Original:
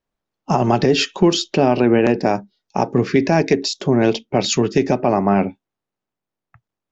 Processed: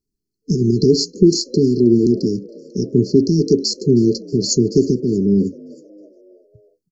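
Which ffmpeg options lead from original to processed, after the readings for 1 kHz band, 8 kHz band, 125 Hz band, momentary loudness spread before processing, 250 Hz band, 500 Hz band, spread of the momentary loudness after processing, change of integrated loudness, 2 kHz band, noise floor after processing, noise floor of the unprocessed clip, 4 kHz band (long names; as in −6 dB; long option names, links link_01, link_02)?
below −40 dB, can't be measured, +3.0 dB, 6 LU, +3.0 dB, +0.5 dB, 8 LU, +1.5 dB, below −40 dB, −80 dBFS, −85 dBFS, −0.5 dB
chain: -filter_complex "[0:a]afftfilt=real='re*(1-between(b*sr/4096,450,4100))':imag='im*(1-between(b*sr/4096,450,4100))':win_size=4096:overlap=0.75,asplit=5[link_01][link_02][link_03][link_04][link_05];[link_02]adelay=316,afreqshift=55,volume=-23.5dB[link_06];[link_03]adelay=632,afreqshift=110,volume=-28.7dB[link_07];[link_04]adelay=948,afreqshift=165,volume=-33.9dB[link_08];[link_05]adelay=1264,afreqshift=220,volume=-39.1dB[link_09];[link_01][link_06][link_07][link_08][link_09]amix=inputs=5:normalize=0,volume=3dB"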